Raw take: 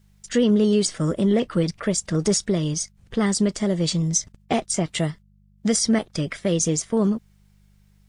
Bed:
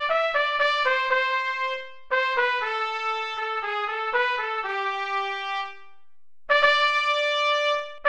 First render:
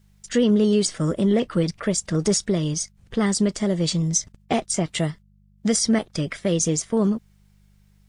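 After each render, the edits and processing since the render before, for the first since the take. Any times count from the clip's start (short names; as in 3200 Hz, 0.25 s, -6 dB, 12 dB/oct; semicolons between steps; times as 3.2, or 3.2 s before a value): nothing audible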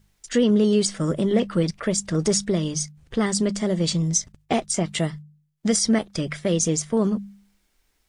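de-hum 50 Hz, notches 4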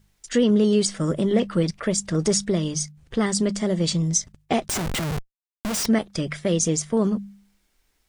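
4.68–5.86 Schmitt trigger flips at -35 dBFS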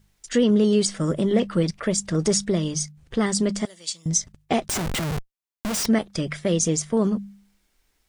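3.65–4.06 differentiator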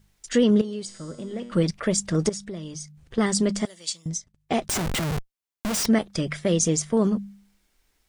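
0.61–1.52 resonator 120 Hz, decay 1.6 s, mix 80%; 2.29–3.18 compressor 2:1, threshold -41 dBFS; 3.94–4.62 dip -15 dB, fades 0.28 s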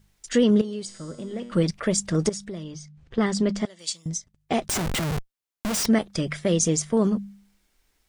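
2.63–3.79 air absorption 98 m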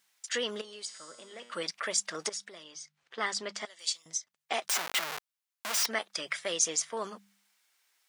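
HPF 980 Hz 12 dB/oct; dynamic EQ 8500 Hz, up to -5 dB, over -43 dBFS, Q 1.5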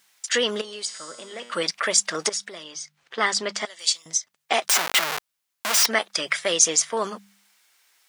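gain +10 dB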